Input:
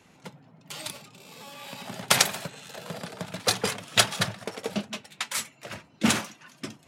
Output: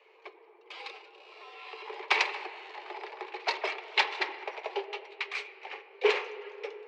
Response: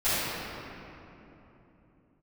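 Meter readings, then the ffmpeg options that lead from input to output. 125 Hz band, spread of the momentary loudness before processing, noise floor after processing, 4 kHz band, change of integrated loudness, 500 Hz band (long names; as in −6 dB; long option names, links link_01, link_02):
below −40 dB, 20 LU, −59 dBFS, −7.5 dB, −5.5 dB, +0.5 dB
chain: -filter_complex "[0:a]highpass=frequency=210:width=0.5412,highpass=frequency=210:width=1.3066,equalizer=frequency=250:width_type=q:width=4:gain=6,equalizer=frequency=480:width_type=q:width=4:gain=-7,equalizer=frequency=680:width_type=q:width=4:gain=4,equalizer=frequency=1300:width_type=q:width=4:gain=-8,equalizer=frequency=2100:width_type=q:width=4:gain=7,equalizer=frequency=3300:width_type=q:width=4:gain=-5,lowpass=frequency=3700:width=0.5412,lowpass=frequency=3700:width=1.3066,asplit=2[link_01][link_02];[1:a]atrim=start_sample=2205,lowpass=3600[link_03];[link_02][link_03]afir=irnorm=-1:irlink=0,volume=-27dB[link_04];[link_01][link_04]amix=inputs=2:normalize=0,afreqshift=190,volume=-3dB"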